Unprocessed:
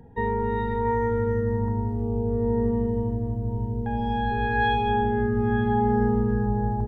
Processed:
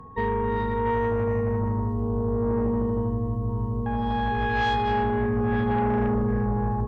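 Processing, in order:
harmonic generator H 5 −15 dB, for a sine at −10.5 dBFS
steady tone 1,100 Hz −40 dBFS
level −4 dB

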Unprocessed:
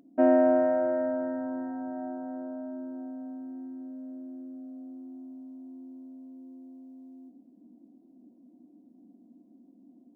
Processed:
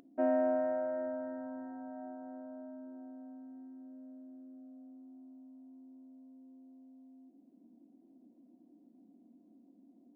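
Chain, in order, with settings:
bass and treble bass −3 dB, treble −7 dB
mains-hum notches 50/100/150/200/250/300/350 Hz
upward compression, threshold −46 dBFS
level −8 dB

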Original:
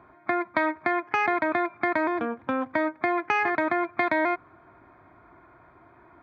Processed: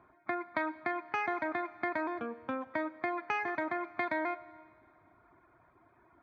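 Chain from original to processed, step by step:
reverb reduction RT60 0.76 s
four-comb reverb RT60 1.9 s, combs from 32 ms, DRR 15.5 dB
level −8.5 dB

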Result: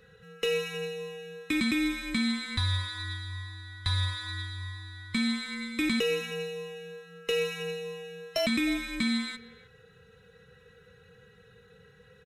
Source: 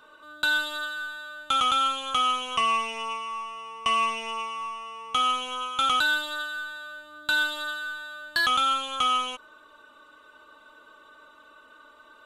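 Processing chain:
neighbouring bands swapped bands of 1,000 Hz
far-end echo of a speakerphone 310 ms, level −18 dB
level −4 dB

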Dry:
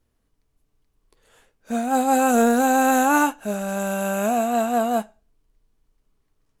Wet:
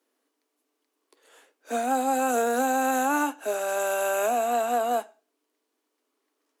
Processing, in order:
Butterworth high-pass 260 Hz 72 dB per octave
downward compressor 6 to 1, threshold −23 dBFS, peak gain reduction 9 dB
level +1.5 dB

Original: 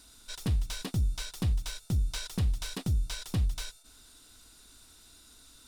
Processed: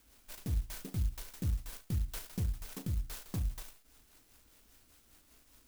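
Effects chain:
rotating-speaker cabinet horn 5 Hz
flutter between parallel walls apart 6.3 metres, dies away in 0.23 s
converter with an unsteady clock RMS 0.13 ms
level −5 dB

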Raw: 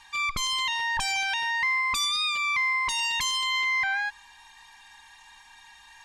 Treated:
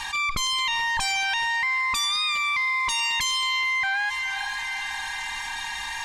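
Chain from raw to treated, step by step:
on a send: feedback delay with all-pass diffusion 455 ms, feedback 46%, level −16 dB
on the sum: envelope flattener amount 70%

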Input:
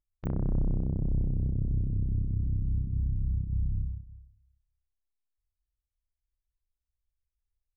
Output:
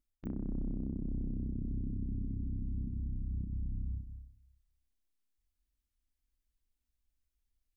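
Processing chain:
graphic EQ with 10 bands 125 Hz −8 dB, 250 Hz +12 dB, 500 Hz −4 dB, 1,000 Hz −4 dB
reversed playback
downward compressor 5 to 1, threshold −38 dBFS, peak gain reduction 13.5 dB
reversed playback
level +3 dB

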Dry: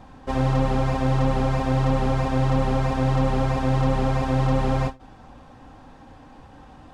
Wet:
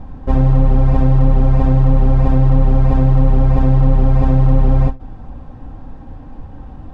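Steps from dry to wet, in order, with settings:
spectral tilt −3.5 dB per octave
in parallel at −2.5 dB: compressor whose output falls as the input rises −13 dBFS, ratio −1
on the sum: level −4.5 dB

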